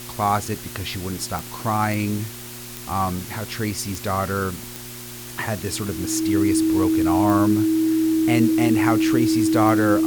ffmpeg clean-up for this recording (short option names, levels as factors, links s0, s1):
-af "adeclick=t=4,bandreject=f=120.1:t=h:w=4,bandreject=f=240.2:t=h:w=4,bandreject=f=360.3:t=h:w=4,bandreject=f=320:w=30,afwtdn=0.014"